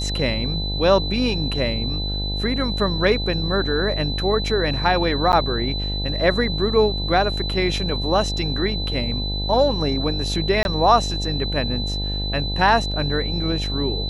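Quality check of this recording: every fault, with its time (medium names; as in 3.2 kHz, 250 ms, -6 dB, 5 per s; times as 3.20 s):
buzz 50 Hz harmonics 18 -26 dBFS
whine 4 kHz -27 dBFS
5.32–5.33 s: dropout 9.9 ms
10.63–10.65 s: dropout 21 ms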